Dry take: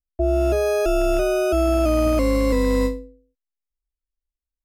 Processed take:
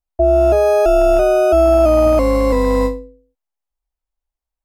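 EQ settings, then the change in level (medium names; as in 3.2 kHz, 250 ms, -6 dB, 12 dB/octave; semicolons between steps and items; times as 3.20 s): bass shelf 160 Hz +3.5 dB; peaking EQ 800 Hz +13.5 dB 1.1 oct; 0.0 dB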